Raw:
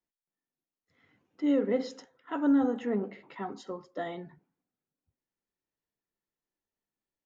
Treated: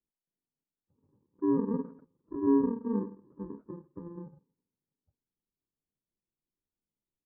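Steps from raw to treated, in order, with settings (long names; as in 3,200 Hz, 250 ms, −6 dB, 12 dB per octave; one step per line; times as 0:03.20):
samples in bit-reversed order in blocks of 64 samples
Gaussian smoothing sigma 9.8 samples
level +3.5 dB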